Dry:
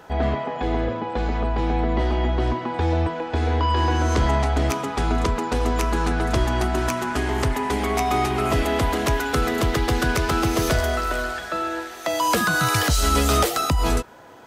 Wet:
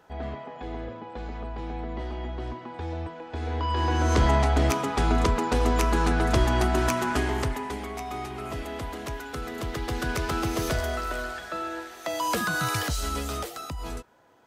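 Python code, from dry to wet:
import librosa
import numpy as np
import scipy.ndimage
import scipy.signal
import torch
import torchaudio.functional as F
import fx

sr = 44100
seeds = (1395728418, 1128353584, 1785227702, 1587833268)

y = fx.gain(x, sr, db=fx.line((3.21, -12.0), (4.18, -1.0), (7.15, -1.0), (7.94, -13.0), (9.42, -13.0), (10.2, -6.5), (12.7, -6.5), (13.46, -14.5)))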